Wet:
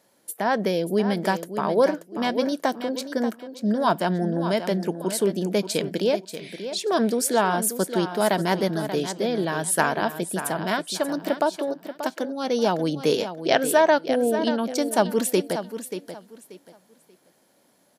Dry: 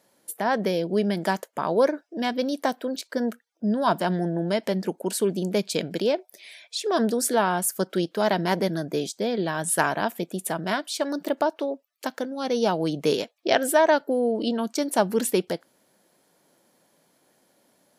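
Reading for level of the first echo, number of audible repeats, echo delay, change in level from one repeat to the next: -10.5 dB, 2, 584 ms, -12.5 dB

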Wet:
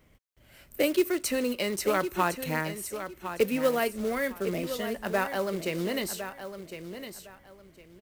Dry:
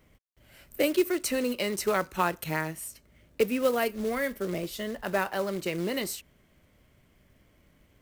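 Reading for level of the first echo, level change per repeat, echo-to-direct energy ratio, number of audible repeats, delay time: -10.0 dB, -13.0 dB, -10.0 dB, 2, 1058 ms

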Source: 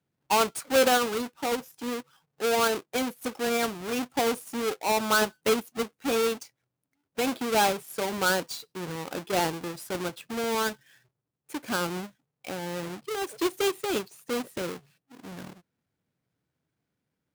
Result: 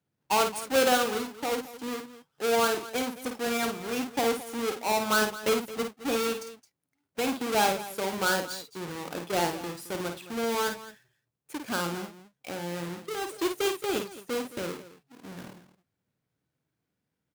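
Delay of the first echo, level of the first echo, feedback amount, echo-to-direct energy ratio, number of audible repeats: 52 ms, -6.5 dB, no regular repeats, -6.0 dB, 2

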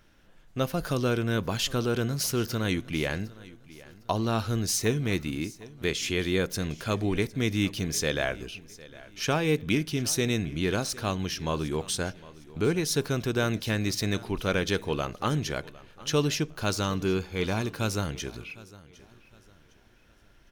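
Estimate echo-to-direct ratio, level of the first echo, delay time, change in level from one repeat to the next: -19.5 dB, -20.0 dB, 757 ms, -9.5 dB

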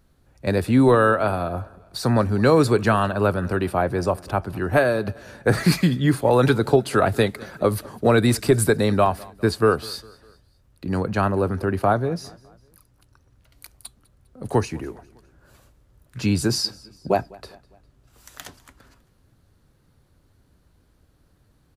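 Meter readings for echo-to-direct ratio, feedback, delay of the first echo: -22.5 dB, 48%, 202 ms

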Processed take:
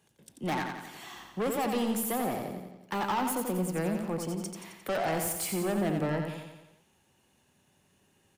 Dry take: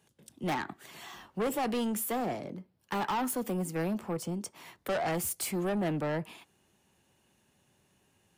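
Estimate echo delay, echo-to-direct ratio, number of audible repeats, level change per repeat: 88 ms, -4.0 dB, 6, -5.0 dB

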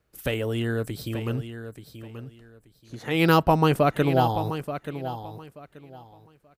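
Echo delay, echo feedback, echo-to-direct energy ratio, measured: 881 ms, 22%, -11.0 dB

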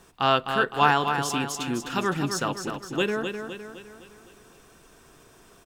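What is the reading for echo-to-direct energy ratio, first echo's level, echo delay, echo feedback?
-6.0 dB, -7.0 dB, 256 ms, 49%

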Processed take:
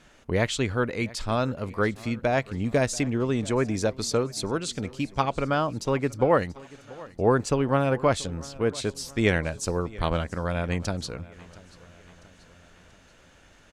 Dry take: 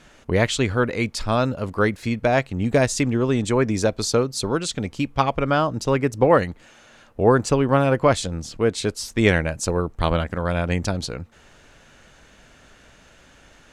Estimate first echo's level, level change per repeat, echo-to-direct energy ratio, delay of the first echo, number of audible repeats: -21.0 dB, -5.5 dB, -19.5 dB, 684 ms, 3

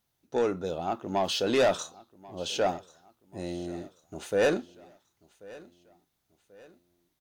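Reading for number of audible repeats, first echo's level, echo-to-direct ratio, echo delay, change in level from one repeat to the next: 2, -21.5 dB, -20.5 dB, 1087 ms, -7.5 dB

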